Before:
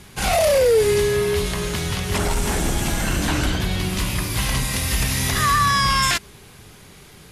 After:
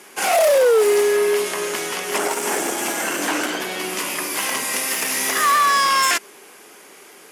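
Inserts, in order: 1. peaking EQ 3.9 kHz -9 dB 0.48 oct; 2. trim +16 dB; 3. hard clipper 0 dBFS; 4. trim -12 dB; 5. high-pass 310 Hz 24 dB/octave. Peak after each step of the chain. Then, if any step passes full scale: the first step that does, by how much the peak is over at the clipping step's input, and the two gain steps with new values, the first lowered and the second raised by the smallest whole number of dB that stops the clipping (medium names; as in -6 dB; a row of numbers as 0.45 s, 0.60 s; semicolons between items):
-9.0 dBFS, +7.0 dBFS, 0.0 dBFS, -12.0 dBFS, -6.0 dBFS; step 2, 7.0 dB; step 2 +9 dB, step 4 -5 dB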